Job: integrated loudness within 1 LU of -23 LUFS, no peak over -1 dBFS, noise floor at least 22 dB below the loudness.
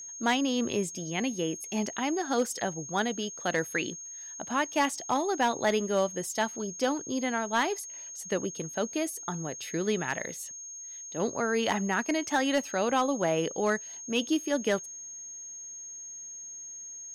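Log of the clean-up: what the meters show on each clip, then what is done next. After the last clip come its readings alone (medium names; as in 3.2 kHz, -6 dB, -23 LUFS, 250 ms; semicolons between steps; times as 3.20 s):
clipped samples 0.2%; clipping level -18.0 dBFS; steady tone 6.5 kHz; tone level -40 dBFS; loudness -30.5 LUFS; peak level -18.0 dBFS; loudness target -23.0 LUFS
-> clip repair -18 dBFS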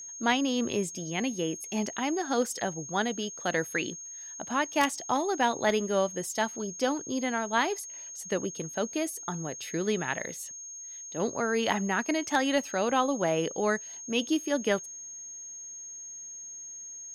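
clipped samples 0.0%; steady tone 6.5 kHz; tone level -40 dBFS
-> band-stop 6.5 kHz, Q 30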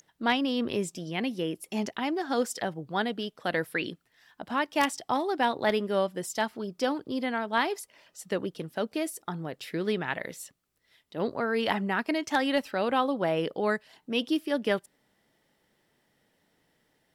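steady tone not found; loudness -30.0 LUFS; peak level -9.0 dBFS; loudness target -23.0 LUFS
-> trim +7 dB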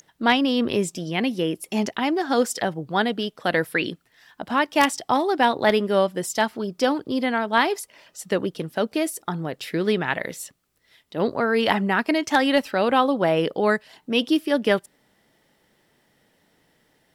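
loudness -23.0 LUFS; peak level -2.0 dBFS; noise floor -66 dBFS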